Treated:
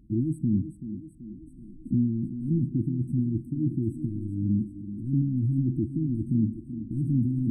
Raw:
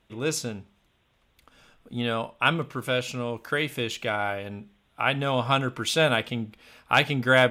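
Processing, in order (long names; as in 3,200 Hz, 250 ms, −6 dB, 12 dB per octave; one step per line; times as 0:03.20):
high-shelf EQ 10,000 Hz +3.5 dB
in parallel at +3 dB: compressor whose output falls as the input rises −34 dBFS, ratio −1
on the sum: soft clipping −17.5 dBFS, distortion −12 dB
auto-filter low-pass square 1.3 Hz 720–2,200 Hz
linear-phase brick-wall band-stop 350–7,900 Hz
on a send: feedback echo with a high-pass in the loop 382 ms, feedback 68%, high-pass 180 Hz, level −9 dB
on the sum: level +2.5 dB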